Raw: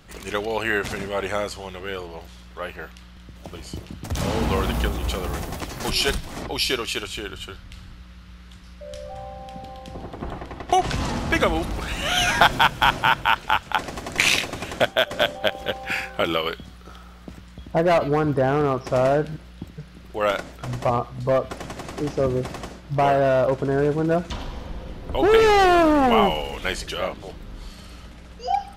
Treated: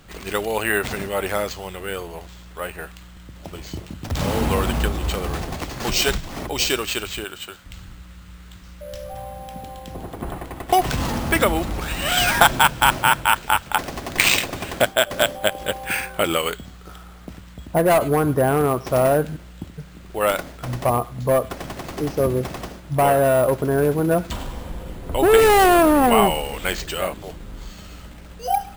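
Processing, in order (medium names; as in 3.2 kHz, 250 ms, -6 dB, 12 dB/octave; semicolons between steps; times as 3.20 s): 7.24–7.66 s: high-pass 370 Hz 6 dB/octave; careless resampling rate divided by 4×, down none, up hold; trim +2 dB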